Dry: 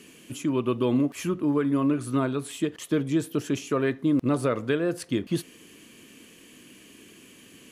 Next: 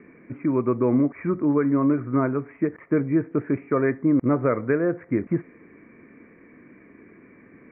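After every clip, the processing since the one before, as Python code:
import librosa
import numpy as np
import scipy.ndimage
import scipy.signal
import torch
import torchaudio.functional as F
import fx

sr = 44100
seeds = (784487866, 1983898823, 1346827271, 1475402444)

y = scipy.signal.sosfilt(scipy.signal.cheby1(8, 1.0, 2300.0, 'lowpass', fs=sr, output='sos'), x)
y = y * librosa.db_to_amplitude(3.5)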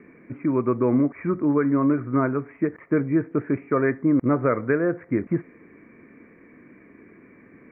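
y = fx.dynamic_eq(x, sr, hz=1500.0, q=1.8, threshold_db=-38.0, ratio=4.0, max_db=3)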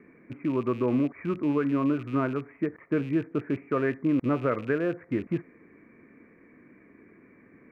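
y = fx.rattle_buzz(x, sr, strikes_db=-31.0, level_db=-32.0)
y = y * librosa.db_to_amplitude(-5.0)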